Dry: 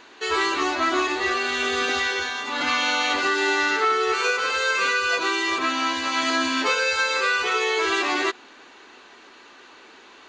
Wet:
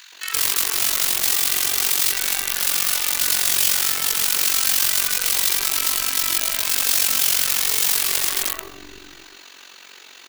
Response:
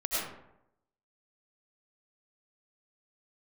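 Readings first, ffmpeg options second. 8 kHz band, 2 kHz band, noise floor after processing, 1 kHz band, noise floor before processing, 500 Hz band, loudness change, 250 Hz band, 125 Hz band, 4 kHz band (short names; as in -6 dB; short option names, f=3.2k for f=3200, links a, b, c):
+16.0 dB, -6.0 dB, -45 dBFS, -9.5 dB, -49 dBFS, -13.0 dB, +4.5 dB, -12.5 dB, n/a, +4.0 dB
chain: -filter_complex "[0:a]asplit=2[a][b];[1:a]atrim=start_sample=2205,lowpass=2.7k,adelay=84[c];[b][c]afir=irnorm=-1:irlink=0,volume=-12dB[d];[a][d]amix=inputs=2:normalize=0,acrusher=bits=6:mode=log:mix=0:aa=0.000001,aeval=exprs='0.376*(cos(1*acos(clip(val(0)/0.376,-1,1)))-cos(1*PI/2))+0.0944*(cos(4*acos(clip(val(0)/0.376,-1,1)))-cos(4*PI/2))':c=same,asoftclip=type=hard:threshold=-22.5dB,acrossover=split=290|1100[e][f][g];[f]adelay=120[h];[e]adelay=680[i];[i][h][g]amix=inputs=3:normalize=0,acrossover=split=2700[j][k];[k]acompressor=threshold=-46dB:ratio=4:attack=1:release=60[l];[j][l]amix=inputs=2:normalize=0,aeval=exprs='(mod(16.8*val(0)+1,2)-1)/16.8':c=same,crystalizer=i=7:c=0,tremolo=f=46:d=0.75,volume=-1dB"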